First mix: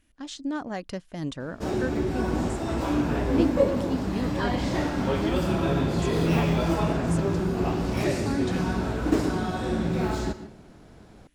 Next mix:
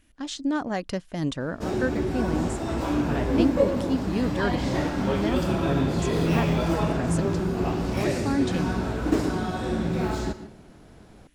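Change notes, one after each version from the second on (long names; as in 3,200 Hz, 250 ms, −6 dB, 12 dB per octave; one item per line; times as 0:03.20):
speech +4.5 dB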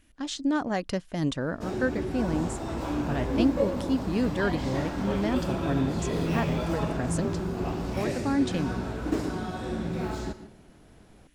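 first sound −5.0 dB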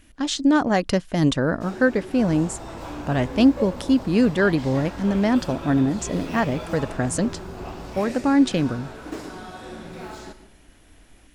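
speech +8.5 dB
first sound: add low-shelf EQ 310 Hz −12 dB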